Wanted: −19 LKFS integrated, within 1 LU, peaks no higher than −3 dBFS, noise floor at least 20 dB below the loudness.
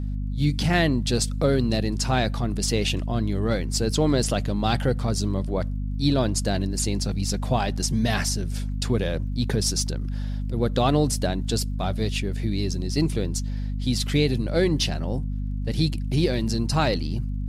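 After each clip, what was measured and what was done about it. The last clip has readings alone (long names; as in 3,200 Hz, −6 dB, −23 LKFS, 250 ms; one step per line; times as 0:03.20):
crackle rate 52 per second; mains hum 50 Hz; hum harmonics up to 250 Hz; level of the hum −25 dBFS; integrated loudness −25.0 LKFS; sample peak −7.5 dBFS; target loudness −19.0 LKFS
→ click removal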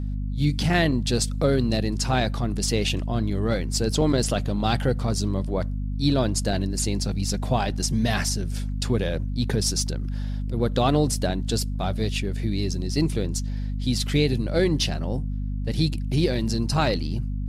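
crackle rate 0.17 per second; mains hum 50 Hz; hum harmonics up to 250 Hz; level of the hum −25 dBFS
→ hum removal 50 Hz, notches 5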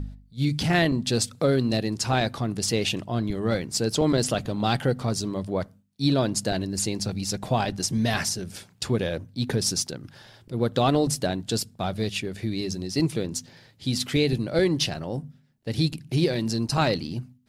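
mains hum none found; integrated loudness −26.0 LKFS; sample peak −8.5 dBFS; target loudness −19.0 LKFS
→ level +7 dB
brickwall limiter −3 dBFS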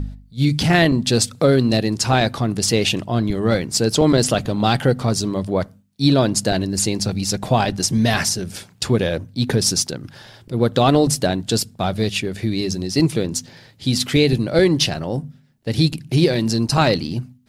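integrated loudness −19.0 LKFS; sample peak −3.0 dBFS; background noise floor −50 dBFS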